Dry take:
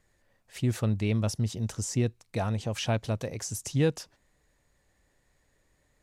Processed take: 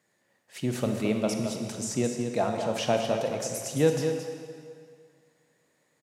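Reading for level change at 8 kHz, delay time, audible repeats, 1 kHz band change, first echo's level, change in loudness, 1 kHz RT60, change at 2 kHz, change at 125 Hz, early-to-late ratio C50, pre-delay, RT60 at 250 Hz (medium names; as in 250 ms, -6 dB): +2.0 dB, 219 ms, 1, +6.5 dB, -8.0 dB, +1.5 dB, 2.2 s, +2.0 dB, -6.0 dB, 3.0 dB, 25 ms, 2.0 s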